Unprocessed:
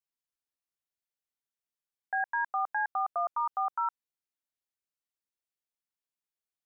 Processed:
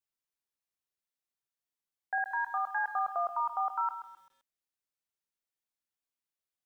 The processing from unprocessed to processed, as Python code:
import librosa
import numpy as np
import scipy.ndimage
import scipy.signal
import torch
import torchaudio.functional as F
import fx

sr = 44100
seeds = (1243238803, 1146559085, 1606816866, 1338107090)

y = fx.highpass(x, sr, hz=640.0, slope=12, at=(2.18, 2.84))
y = fx.echo_crushed(y, sr, ms=131, feedback_pct=35, bits=10, wet_db=-11.0)
y = F.gain(torch.from_numpy(y), -1.0).numpy()